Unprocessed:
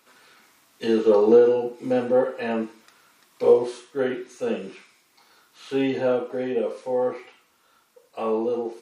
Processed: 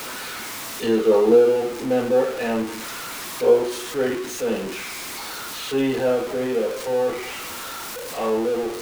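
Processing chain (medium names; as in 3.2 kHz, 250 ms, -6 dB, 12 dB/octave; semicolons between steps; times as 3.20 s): jump at every zero crossing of -27 dBFS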